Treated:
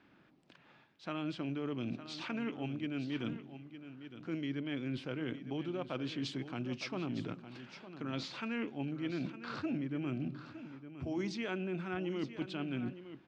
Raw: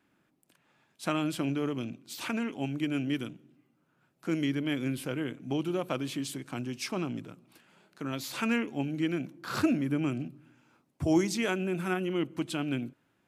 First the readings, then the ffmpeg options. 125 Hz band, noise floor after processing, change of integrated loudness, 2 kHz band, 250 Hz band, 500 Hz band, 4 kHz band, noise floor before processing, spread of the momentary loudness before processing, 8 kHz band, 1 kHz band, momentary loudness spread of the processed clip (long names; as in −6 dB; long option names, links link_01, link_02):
−5.5 dB, −65 dBFS, −7.5 dB, −7.0 dB, −7.0 dB, −7.5 dB, −6.0 dB, −73 dBFS, 10 LU, −16.0 dB, −7.5 dB, 10 LU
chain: -af "lowpass=frequency=4800:width=0.5412,lowpass=frequency=4800:width=1.3066,areverse,acompressor=threshold=-42dB:ratio=6,areverse,aecho=1:1:909:0.251,volume=6dB"